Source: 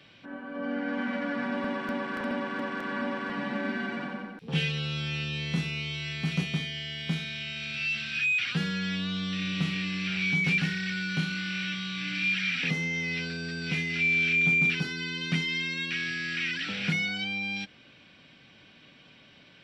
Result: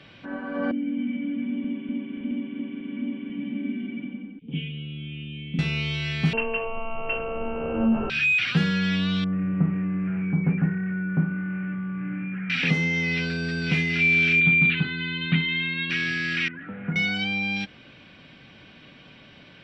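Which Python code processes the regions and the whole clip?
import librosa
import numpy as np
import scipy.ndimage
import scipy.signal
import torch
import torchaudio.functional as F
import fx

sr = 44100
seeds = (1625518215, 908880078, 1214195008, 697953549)

y = fx.chain(x, sr, fx.formant_cascade(vowel='i'),
    fx.high_shelf(hz=3000.0, db=9.5), at=(0.71, 5.59))
y = fx.chain(y, sr, fx.highpass(hz=52.0, slope=12),
    fx.tilt_shelf(db=-5.0, hz=1500.0),
    fx.freq_invert(carrier_hz=2900), at=(6.33, 8.1))
y = fx.chain(y, sr, fx.gaussian_blur(sigma=6.4),
    fx.peak_eq(hz=68.0, db=-7.0, octaves=0.73), at=(9.24, 12.5))
y = fx.chain(y, sr, fx.steep_lowpass(hz=4100.0, slope=96),
    fx.peak_eq(hz=530.0, db=-9.0, octaves=1.5), at=(14.4, 15.9))
y = fx.chain(y, sr, fx.lowpass(hz=1500.0, slope=24),
    fx.comb_fb(f0_hz=240.0, decay_s=0.17, harmonics='all', damping=0.0, mix_pct=60), at=(16.48, 16.96))
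y = fx.lowpass(y, sr, hz=3100.0, slope=6)
y = fx.low_shelf(y, sr, hz=86.0, db=5.0)
y = F.gain(torch.from_numpy(y), 7.0).numpy()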